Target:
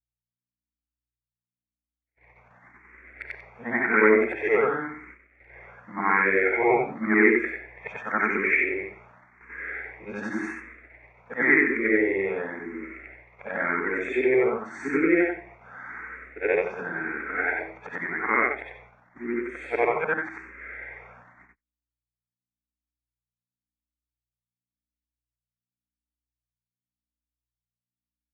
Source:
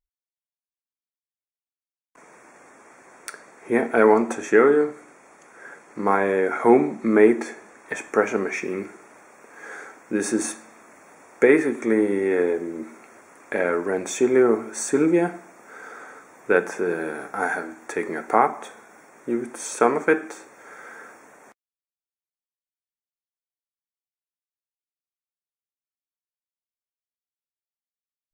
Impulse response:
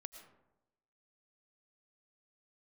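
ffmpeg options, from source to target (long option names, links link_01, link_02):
-filter_complex "[0:a]afftfilt=real='re':imag='-im':win_size=8192:overlap=0.75,aeval=exprs='val(0)+0.002*(sin(2*PI*60*n/s)+sin(2*PI*2*60*n/s)/2+sin(2*PI*3*60*n/s)/3+sin(2*PI*4*60*n/s)/4+sin(2*PI*5*60*n/s)/5)':channel_layout=same,lowpass=frequency=2100:width_type=q:width=6.4,agate=range=-39dB:threshold=-46dB:ratio=16:detection=peak,asplit=2[link_01][link_02];[link_02]afreqshift=0.91[link_03];[link_01][link_03]amix=inputs=2:normalize=1,volume=2dB"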